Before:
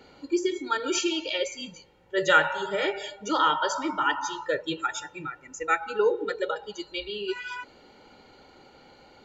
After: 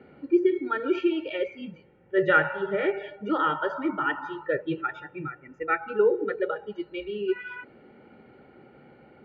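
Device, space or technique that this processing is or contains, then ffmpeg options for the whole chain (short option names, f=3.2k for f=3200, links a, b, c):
bass cabinet: -af "highpass=63,equalizer=f=140:t=q:w=4:g=9,equalizer=f=220:t=q:w=4:g=7,equalizer=f=370:t=q:w=4:g=5,equalizer=f=970:t=q:w=4:g=-9,lowpass=f=2.3k:w=0.5412,lowpass=f=2.3k:w=1.3066"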